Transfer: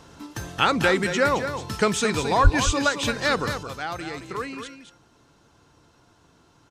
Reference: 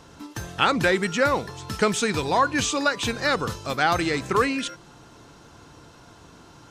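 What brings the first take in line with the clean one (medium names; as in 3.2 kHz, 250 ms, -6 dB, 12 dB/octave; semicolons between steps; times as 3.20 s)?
2.43–2.55 s: high-pass 140 Hz 24 dB/octave; inverse comb 220 ms -9 dB; 3.63 s: gain correction +10 dB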